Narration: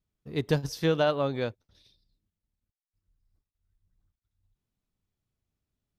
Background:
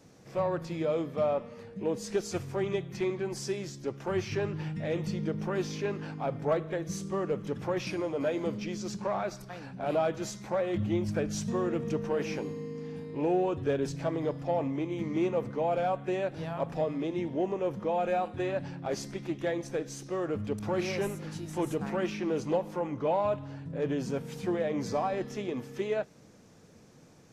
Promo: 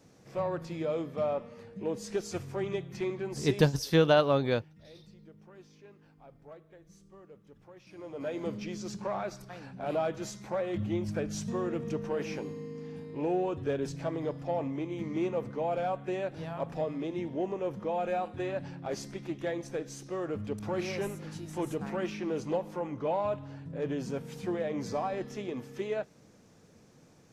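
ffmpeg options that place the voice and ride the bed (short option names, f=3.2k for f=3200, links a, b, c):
-filter_complex "[0:a]adelay=3100,volume=2dB[a];[1:a]volume=17dB,afade=t=out:st=3.61:d=0.25:silence=0.105925,afade=t=in:st=7.87:d=0.62:silence=0.105925[b];[a][b]amix=inputs=2:normalize=0"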